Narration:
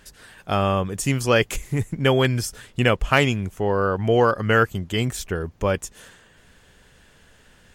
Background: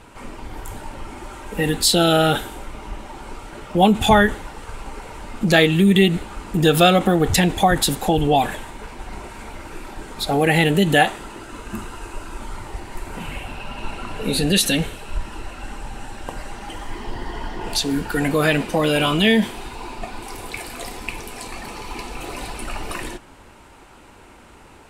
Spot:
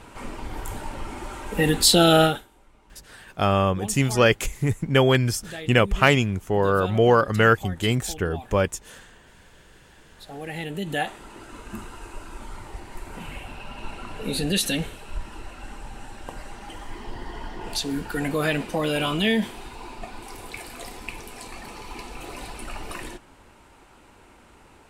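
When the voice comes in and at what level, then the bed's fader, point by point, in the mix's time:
2.90 s, +0.5 dB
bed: 0:02.24 0 dB
0:02.47 −22.5 dB
0:10.08 −22.5 dB
0:11.43 −6 dB

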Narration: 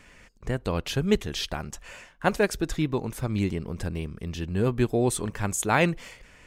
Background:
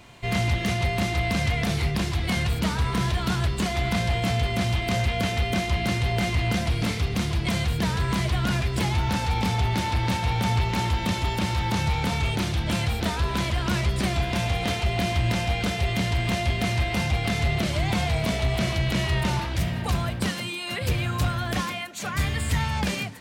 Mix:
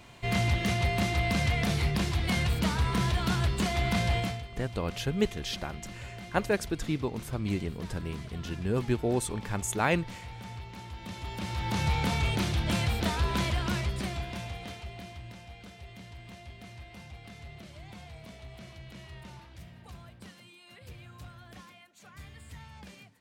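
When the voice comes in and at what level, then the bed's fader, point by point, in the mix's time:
4.10 s, −4.5 dB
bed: 0:04.19 −3 dB
0:04.47 −19 dB
0:10.87 −19 dB
0:11.88 −3 dB
0:13.47 −3 dB
0:15.37 −22.5 dB

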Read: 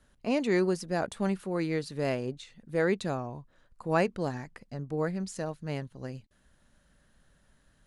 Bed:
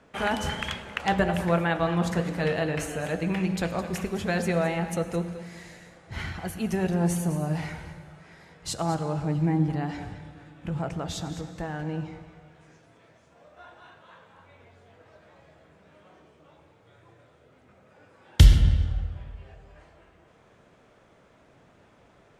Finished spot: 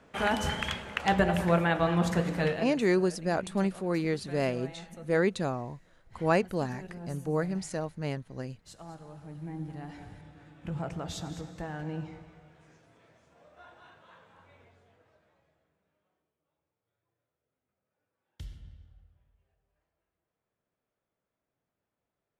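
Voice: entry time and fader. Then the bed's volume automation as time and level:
2.35 s, +1.0 dB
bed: 0:02.45 −1 dB
0:02.82 −18.5 dB
0:09.21 −18.5 dB
0:10.53 −4.5 dB
0:14.57 −4.5 dB
0:16.34 −29.5 dB

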